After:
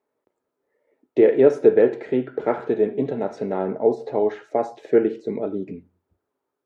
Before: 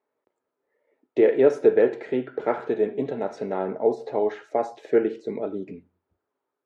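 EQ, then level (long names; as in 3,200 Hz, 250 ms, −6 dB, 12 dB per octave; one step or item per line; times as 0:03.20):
low-shelf EQ 390 Hz +6.5 dB
0.0 dB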